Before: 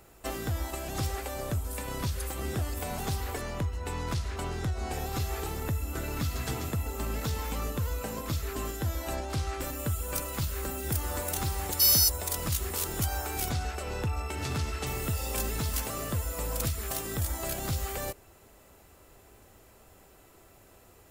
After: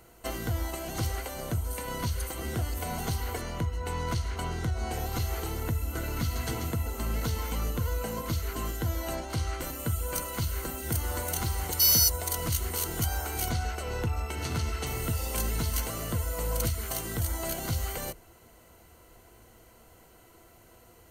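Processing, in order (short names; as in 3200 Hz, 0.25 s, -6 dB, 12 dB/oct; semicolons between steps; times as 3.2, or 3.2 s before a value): ripple EQ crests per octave 1.9, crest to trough 8 dB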